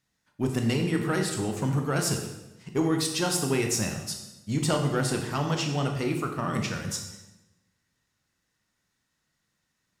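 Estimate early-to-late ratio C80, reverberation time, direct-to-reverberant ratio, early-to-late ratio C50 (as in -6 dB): 7.5 dB, 1.0 s, 3.0 dB, 6.0 dB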